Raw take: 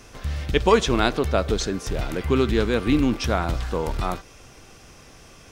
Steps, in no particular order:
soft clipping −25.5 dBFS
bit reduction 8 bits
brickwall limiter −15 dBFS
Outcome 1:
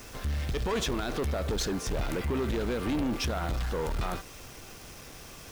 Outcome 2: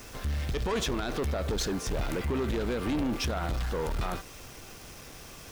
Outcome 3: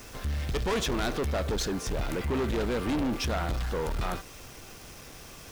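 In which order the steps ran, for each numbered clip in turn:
brickwall limiter, then bit reduction, then soft clipping
bit reduction, then brickwall limiter, then soft clipping
bit reduction, then soft clipping, then brickwall limiter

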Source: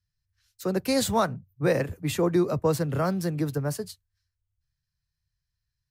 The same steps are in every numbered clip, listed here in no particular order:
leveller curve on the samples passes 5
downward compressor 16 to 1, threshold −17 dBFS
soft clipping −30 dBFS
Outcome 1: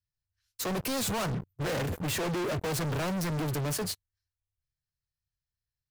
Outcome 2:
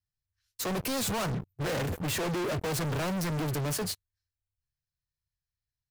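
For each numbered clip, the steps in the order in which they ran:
leveller curve on the samples, then downward compressor, then soft clipping
downward compressor, then leveller curve on the samples, then soft clipping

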